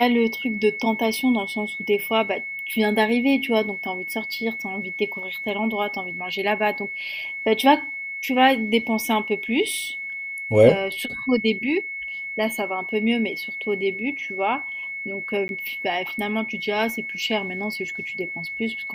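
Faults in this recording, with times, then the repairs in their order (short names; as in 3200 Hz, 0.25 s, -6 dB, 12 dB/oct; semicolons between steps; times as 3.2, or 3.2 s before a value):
tone 2200 Hz -29 dBFS
15.48–15.49 gap 11 ms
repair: notch 2200 Hz, Q 30; interpolate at 15.48, 11 ms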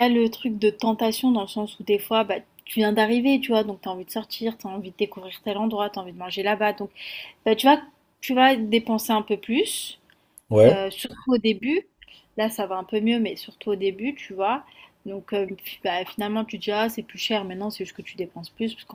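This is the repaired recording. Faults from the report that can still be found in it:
none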